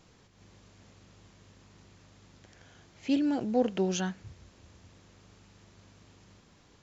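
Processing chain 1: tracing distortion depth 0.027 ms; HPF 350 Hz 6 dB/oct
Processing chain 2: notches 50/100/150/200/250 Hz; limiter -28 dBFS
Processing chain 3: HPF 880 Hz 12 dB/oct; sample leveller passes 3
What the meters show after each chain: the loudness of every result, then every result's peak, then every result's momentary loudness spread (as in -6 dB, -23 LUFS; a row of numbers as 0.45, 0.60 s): -33.0, -36.5, -32.0 LUFS; -17.5, -28.0, -22.5 dBFS; 8, 16, 21 LU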